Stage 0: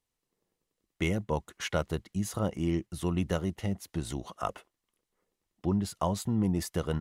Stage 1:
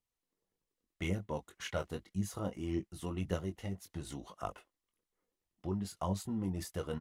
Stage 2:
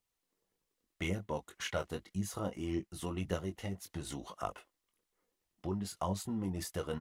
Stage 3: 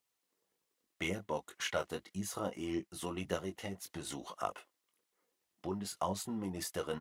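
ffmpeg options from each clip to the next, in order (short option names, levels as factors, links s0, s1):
-filter_complex "[0:a]asplit=2[s0][s1];[s1]adelay=21,volume=0.447[s2];[s0][s2]amix=inputs=2:normalize=0,aphaser=in_gain=1:out_gain=1:delay=4.4:decay=0.37:speed=1.8:type=triangular,volume=0.376"
-filter_complex "[0:a]lowshelf=f=330:g=-4,asplit=2[s0][s1];[s1]acompressor=threshold=0.00631:ratio=6,volume=0.794[s2];[s0][s2]amix=inputs=2:normalize=0"
-af "highpass=f=290:p=1,volume=1.26"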